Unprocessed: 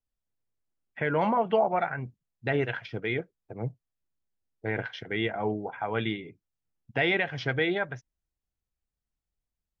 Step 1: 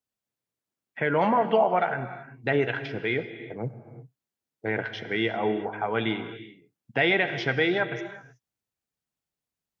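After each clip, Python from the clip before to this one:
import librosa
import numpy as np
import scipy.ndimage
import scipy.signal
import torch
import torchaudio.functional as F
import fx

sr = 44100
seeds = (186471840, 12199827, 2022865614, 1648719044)

y = scipy.signal.sosfilt(scipy.signal.butter(2, 140.0, 'highpass', fs=sr, output='sos'), x)
y = fx.rev_gated(y, sr, seeds[0], gate_ms=400, shape='flat', drr_db=10.5)
y = F.gain(torch.from_numpy(y), 3.0).numpy()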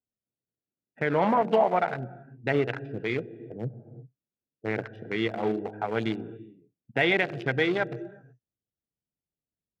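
y = fx.wiener(x, sr, points=41)
y = np.clip(y, -10.0 ** (-11.5 / 20.0), 10.0 ** (-11.5 / 20.0))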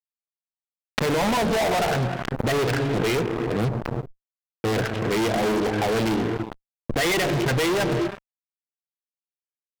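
y = fx.fuzz(x, sr, gain_db=44.0, gate_db=-46.0)
y = fx.pre_swell(y, sr, db_per_s=29.0)
y = F.gain(torch.from_numpy(y), -7.5).numpy()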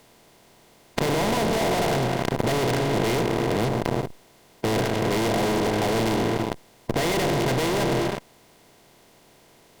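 y = fx.bin_compress(x, sr, power=0.4)
y = fx.peak_eq(y, sr, hz=1800.0, db=-5.0, octaves=1.2)
y = F.gain(torch.from_numpy(y), -5.5).numpy()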